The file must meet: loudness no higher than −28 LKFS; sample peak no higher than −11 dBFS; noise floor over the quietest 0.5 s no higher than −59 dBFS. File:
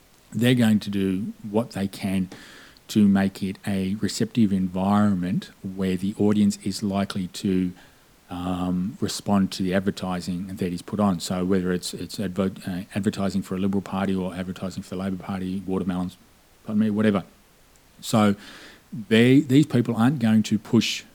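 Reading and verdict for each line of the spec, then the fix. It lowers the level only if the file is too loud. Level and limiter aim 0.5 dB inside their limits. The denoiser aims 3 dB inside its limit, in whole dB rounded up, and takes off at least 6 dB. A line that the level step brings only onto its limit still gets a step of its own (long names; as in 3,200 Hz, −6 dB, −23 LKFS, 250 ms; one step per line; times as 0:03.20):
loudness −24.0 LKFS: out of spec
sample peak −4.5 dBFS: out of spec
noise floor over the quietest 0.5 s −55 dBFS: out of spec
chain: level −4.5 dB
brickwall limiter −11.5 dBFS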